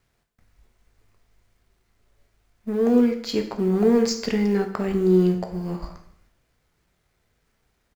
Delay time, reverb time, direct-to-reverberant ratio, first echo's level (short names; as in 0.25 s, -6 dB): 0.159 s, 0.60 s, 4.5 dB, -22.0 dB